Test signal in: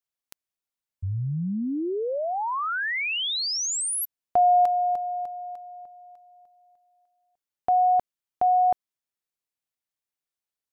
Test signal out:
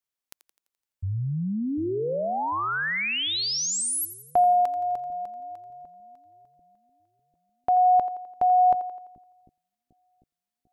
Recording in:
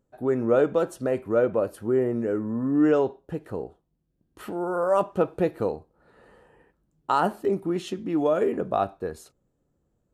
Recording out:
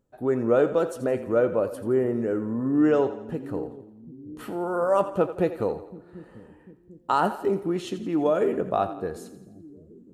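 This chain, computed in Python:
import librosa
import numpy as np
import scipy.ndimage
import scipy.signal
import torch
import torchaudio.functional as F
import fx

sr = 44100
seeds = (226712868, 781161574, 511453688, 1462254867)

y = fx.echo_split(x, sr, split_hz=310.0, low_ms=746, high_ms=85, feedback_pct=52, wet_db=-13.0)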